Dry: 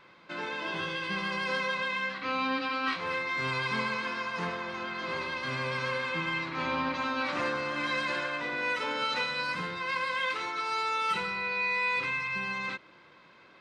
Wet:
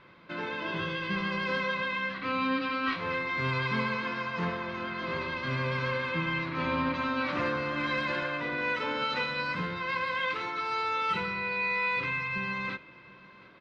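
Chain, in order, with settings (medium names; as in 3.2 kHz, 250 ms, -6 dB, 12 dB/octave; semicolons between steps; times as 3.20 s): low-pass 4.1 kHz 12 dB/octave; bass shelf 210 Hz +9.5 dB; band-stop 800 Hz, Q 12; delay 730 ms -22 dB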